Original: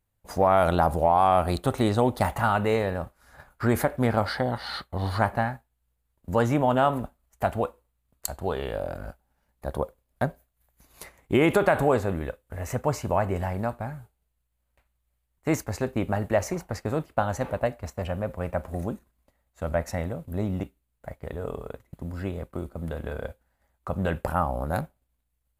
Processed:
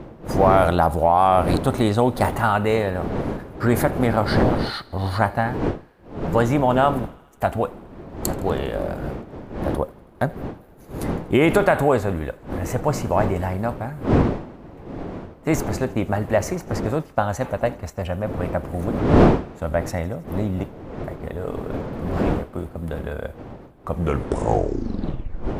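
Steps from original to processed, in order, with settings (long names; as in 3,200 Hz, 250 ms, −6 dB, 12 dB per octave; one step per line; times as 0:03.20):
turntable brake at the end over 1.77 s
wind on the microphone 410 Hz −31 dBFS
feedback echo with a high-pass in the loop 81 ms, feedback 76%, high-pass 570 Hz, level −24 dB
level +4 dB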